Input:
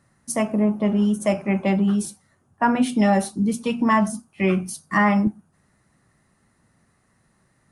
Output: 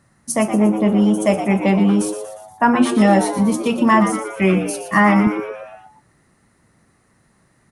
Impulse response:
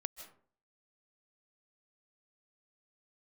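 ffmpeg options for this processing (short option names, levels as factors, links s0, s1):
-filter_complex "[0:a]asplit=7[s0][s1][s2][s3][s4][s5][s6];[s1]adelay=118,afreqshift=110,volume=0.316[s7];[s2]adelay=236,afreqshift=220,volume=0.17[s8];[s3]adelay=354,afreqshift=330,volume=0.0923[s9];[s4]adelay=472,afreqshift=440,volume=0.0495[s10];[s5]adelay=590,afreqshift=550,volume=0.0269[s11];[s6]adelay=708,afreqshift=660,volume=0.0145[s12];[s0][s7][s8][s9][s10][s11][s12]amix=inputs=7:normalize=0,volume=1.68"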